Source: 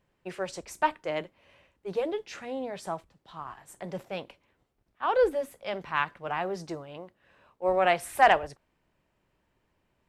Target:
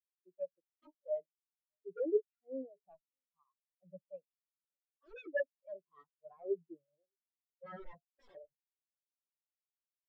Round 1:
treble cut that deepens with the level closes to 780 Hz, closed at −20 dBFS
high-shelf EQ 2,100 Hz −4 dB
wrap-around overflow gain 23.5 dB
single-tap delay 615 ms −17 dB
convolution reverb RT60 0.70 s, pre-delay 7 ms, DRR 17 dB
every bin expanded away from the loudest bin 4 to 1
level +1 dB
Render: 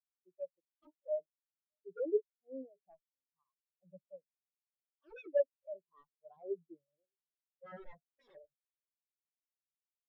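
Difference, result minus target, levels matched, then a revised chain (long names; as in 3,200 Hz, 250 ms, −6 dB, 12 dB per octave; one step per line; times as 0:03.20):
2,000 Hz band −12.5 dB
treble cut that deepens with the level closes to 780 Hz, closed at −20 dBFS
high-shelf EQ 2,100 Hz +4 dB
wrap-around overflow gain 23.5 dB
single-tap delay 615 ms −17 dB
convolution reverb RT60 0.70 s, pre-delay 7 ms, DRR 17 dB
every bin expanded away from the loudest bin 4 to 1
level +1 dB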